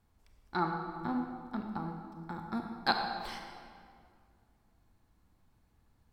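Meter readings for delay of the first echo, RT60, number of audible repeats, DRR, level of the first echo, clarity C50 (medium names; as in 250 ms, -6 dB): no echo, 2.2 s, no echo, 3.0 dB, no echo, 4.0 dB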